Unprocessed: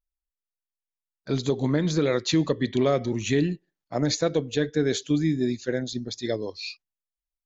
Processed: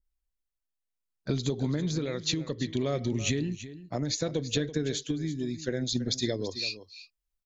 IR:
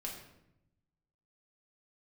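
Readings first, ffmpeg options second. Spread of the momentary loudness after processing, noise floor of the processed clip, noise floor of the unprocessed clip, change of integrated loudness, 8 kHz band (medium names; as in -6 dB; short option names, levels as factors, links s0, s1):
6 LU, -85 dBFS, under -85 dBFS, -5.5 dB, no reading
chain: -af "lowshelf=f=310:g=9.5,acompressor=threshold=0.0562:ratio=10,tremolo=f=0.66:d=0.36,aecho=1:1:332:0.2,adynamicequalizer=threshold=0.00282:dfrequency=2000:dqfactor=0.7:tfrequency=2000:tqfactor=0.7:attack=5:release=100:ratio=0.375:range=3.5:mode=boostabove:tftype=highshelf"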